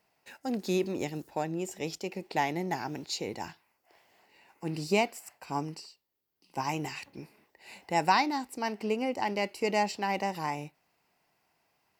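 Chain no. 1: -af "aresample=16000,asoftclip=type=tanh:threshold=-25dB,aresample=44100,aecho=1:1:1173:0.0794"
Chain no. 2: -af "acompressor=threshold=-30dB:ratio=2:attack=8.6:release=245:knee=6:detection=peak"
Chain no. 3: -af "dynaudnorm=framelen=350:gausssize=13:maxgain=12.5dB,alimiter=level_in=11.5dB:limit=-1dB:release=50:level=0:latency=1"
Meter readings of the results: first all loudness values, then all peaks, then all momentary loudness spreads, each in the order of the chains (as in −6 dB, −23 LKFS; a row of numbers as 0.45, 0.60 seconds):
−35.0, −35.5, −15.5 LKFS; −23.0, −16.0, −1.0 dBFS; 17, 14, 13 LU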